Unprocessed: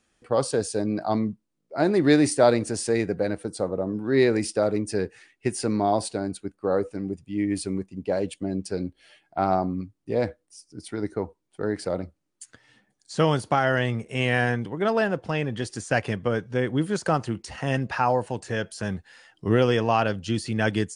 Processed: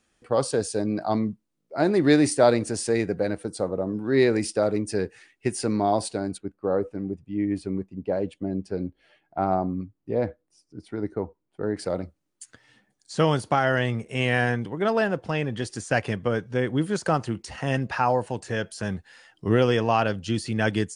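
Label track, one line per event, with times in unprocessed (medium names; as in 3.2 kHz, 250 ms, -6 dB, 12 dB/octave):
6.380000	11.770000	low-pass 1.3 kHz 6 dB/octave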